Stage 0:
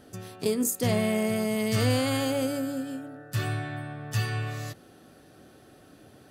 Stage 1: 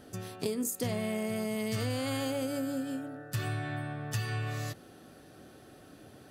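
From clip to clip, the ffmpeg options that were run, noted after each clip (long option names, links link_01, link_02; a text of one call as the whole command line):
ffmpeg -i in.wav -af "acompressor=threshold=-30dB:ratio=5" out.wav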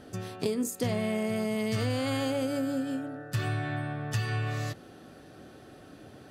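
ffmpeg -i in.wav -af "highshelf=frequency=8700:gain=-10.5,volume=3.5dB" out.wav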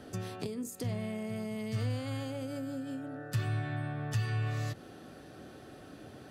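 ffmpeg -i in.wav -filter_complex "[0:a]acrossover=split=150[link_01][link_02];[link_02]acompressor=threshold=-38dB:ratio=6[link_03];[link_01][link_03]amix=inputs=2:normalize=0" out.wav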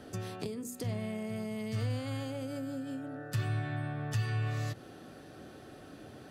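ffmpeg -i in.wav -af "bandreject=frequency=61.67:width_type=h:width=4,bandreject=frequency=123.34:width_type=h:width=4,bandreject=frequency=185.01:width_type=h:width=4,bandreject=frequency=246.68:width_type=h:width=4" out.wav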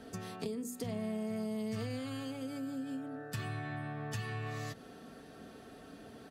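ffmpeg -i in.wav -af "aecho=1:1:4.4:0.53,volume=-2.5dB" out.wav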